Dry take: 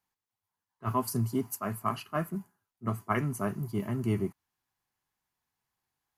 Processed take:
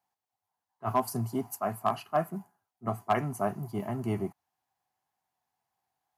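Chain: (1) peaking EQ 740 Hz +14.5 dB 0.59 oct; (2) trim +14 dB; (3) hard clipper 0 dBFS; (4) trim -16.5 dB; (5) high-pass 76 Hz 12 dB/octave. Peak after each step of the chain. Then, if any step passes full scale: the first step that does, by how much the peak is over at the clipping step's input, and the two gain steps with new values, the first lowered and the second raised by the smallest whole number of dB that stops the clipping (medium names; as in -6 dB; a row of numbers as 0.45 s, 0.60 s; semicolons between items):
-8.0 dBFS, +6.0 dBFS, 0.0 dBFS, -16.5 dBFS, -15.0 dBFS; step 2, 6.0 dB; step 2 +8 dB, step 4 -10.5 dB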